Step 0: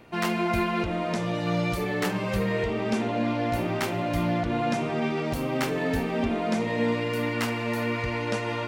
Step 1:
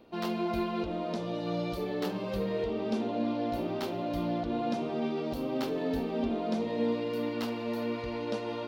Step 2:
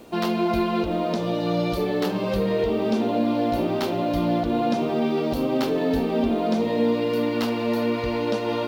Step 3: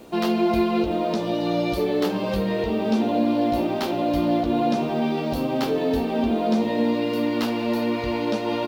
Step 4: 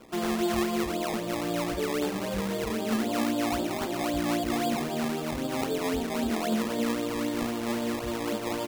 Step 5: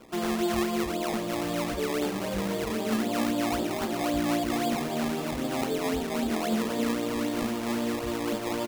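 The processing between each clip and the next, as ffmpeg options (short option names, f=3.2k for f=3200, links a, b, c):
-af "equalizer=f=125:t=o:w=1:g=-7,equalizer=f=250:t=o:w=1:g=5,equalizer=f=500:t=o:w=1:g=4,equalizer=f=2k:t=o:w=1:g=-9,equalizer=f=4k:t=o:w=1:g=7,equalizer=f=8k:t=o:w=1:g=-10,volume=-7.5dB"
-filter_complex "[0:a]asplit=2[a][b];[b]alimiter=level_in=4dB:limit=-24dB:level=0:latency=1:release=245,volume=-4dB,volume=2.5dB[c];[a][c]amix=inputs=2:normalize=0,acrusher=bits=9:mix=0:aa=0.000001,volume=4dB"
-filter_complex "[0:a]asplit=2[a][b];[b]adelay=14,volume=-7.5dB[c];[a][c]amix=inputs=2:normalize=0"
-af "acrusher=samples=21:mix=1:aa=0.000001:lfo=1:lforange=21:lforate=3.8,volume=-6.5dB"
-af "aecho=1:1:910:0.266"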